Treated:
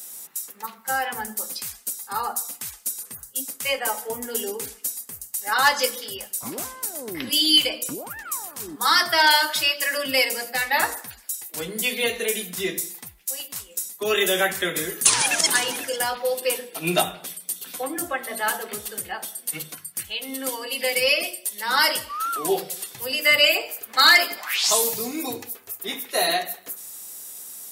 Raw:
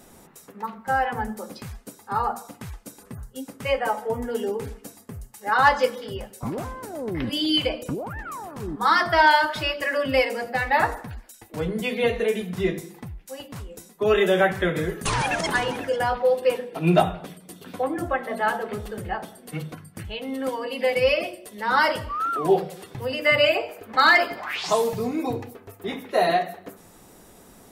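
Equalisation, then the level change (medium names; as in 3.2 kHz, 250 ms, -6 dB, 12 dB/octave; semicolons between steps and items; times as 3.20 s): dynamic bell 280 Hz, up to +7 dB, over -37 dBFS, Q 0.93; tilt EQ +3.5 dB/octave; treble shelf 3.4 kHz +12 dB; -4.5 dB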